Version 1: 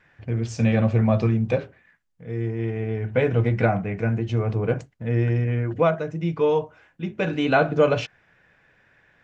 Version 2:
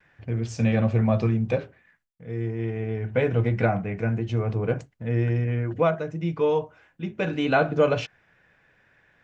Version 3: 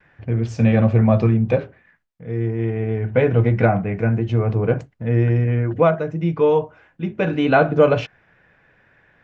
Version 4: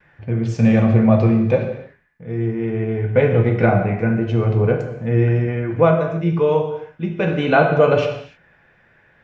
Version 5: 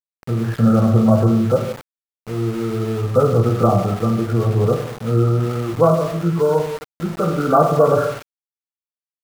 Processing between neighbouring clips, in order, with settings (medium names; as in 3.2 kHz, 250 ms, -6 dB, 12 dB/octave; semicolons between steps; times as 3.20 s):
gate with hold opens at -57 dBFS; trim -2 dB
low-pass 2.3 kHz 6 dB/octave; trim +6.5 dB
gated-style reverb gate 330 ms falling, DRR 3 dB
knee-point frequency compression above 1.1 kHz 4:1; small samples zeroed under -28.5 dBFS